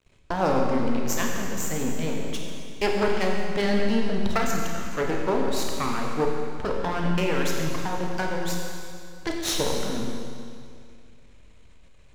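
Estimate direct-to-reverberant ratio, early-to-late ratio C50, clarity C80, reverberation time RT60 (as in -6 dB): -0.5 dB, 1.5 dB, 2.5 dB, 2.3 s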